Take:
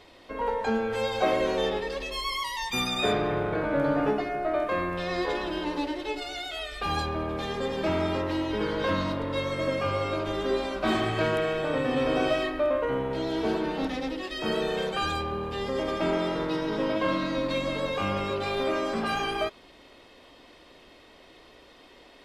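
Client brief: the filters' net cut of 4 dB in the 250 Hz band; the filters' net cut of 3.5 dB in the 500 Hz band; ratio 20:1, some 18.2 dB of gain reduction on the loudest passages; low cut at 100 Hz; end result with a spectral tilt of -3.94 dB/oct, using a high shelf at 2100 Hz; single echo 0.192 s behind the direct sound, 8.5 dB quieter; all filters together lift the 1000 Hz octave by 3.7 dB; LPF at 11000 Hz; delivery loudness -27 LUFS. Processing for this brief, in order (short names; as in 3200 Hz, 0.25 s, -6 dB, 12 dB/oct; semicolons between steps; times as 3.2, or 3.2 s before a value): HPF 100 Hz; LPF 11000 Hz; bell 250 Hz -3.5 dB; bell 500 Hz -5.5 dB; bell 1000 Hz +5.5 dB; high shelf 2100 Hz +4 dB; compressor 20:1, threshold -39 dBFS; echo 0.192 s -8.5 dB; gain +15 dB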